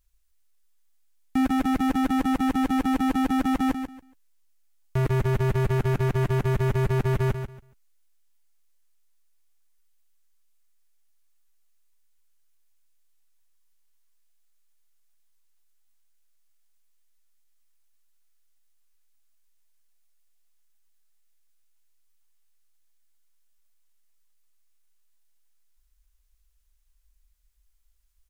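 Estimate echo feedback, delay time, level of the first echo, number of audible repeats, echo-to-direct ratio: 21%, 140 ms, -8.5 dB, 2, -8.5 dB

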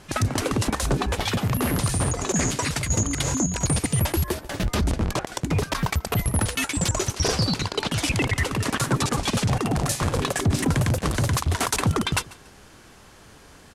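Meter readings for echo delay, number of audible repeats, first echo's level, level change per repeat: 142 ms, 2, -21.0 dB, -11.0 dB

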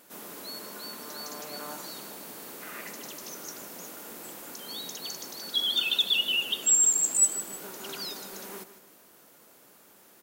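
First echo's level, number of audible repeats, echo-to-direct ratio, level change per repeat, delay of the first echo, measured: -13.0 dB, 2, -12.5 dB, -8.5 dB, 155 ms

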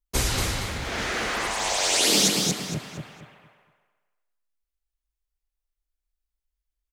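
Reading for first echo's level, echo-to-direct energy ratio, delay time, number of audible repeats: -4.5 dB, -4.0 dB, 231 ms, 3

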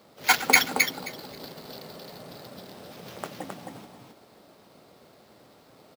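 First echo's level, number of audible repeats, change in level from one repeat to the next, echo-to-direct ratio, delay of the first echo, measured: -4.0 dB, 2, -16.5 dB, -4.0 dB, 265 ms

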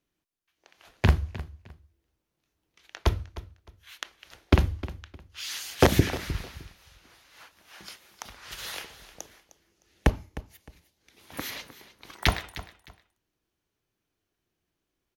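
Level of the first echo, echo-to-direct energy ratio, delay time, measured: -16.0 dB, -16.0 dB, 307 ms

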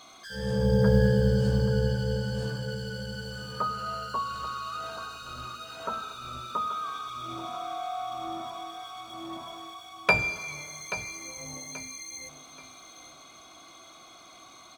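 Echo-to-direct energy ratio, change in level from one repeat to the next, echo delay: -11.5 dB, -10.0 dB, 831 ms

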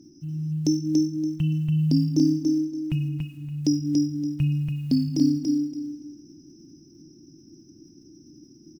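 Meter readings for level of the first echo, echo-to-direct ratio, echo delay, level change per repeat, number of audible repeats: -3.5 dB, -3.5 dB, 285 ms, -13.0 dB, 3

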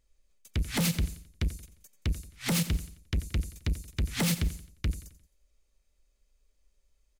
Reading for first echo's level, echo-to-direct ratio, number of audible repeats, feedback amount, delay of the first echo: -14.5 dB, -13.5 dB, 3, 41%, 88 ms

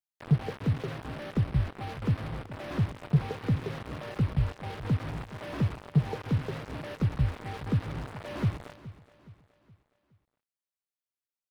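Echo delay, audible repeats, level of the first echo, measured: 419 ms, 3, -17.0 dB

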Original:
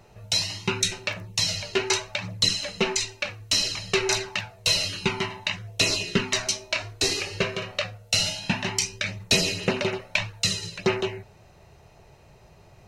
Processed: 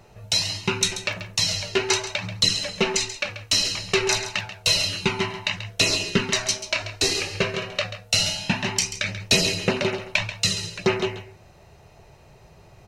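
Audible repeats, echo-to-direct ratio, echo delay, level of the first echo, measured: 1, -12.0 dB, 136 ms, -12.0 dB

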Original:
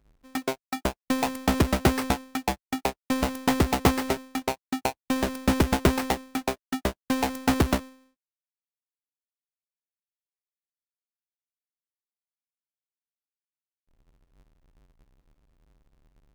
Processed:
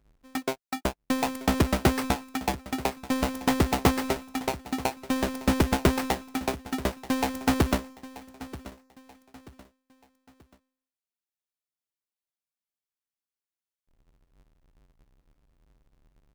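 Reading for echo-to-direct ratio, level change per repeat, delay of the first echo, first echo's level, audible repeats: -16.5 dB, -8.5 dB, 933 ms, -17.0 dB, 3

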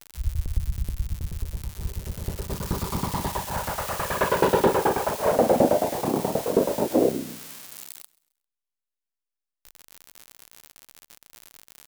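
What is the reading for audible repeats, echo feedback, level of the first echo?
2, 38%, -23.0 dB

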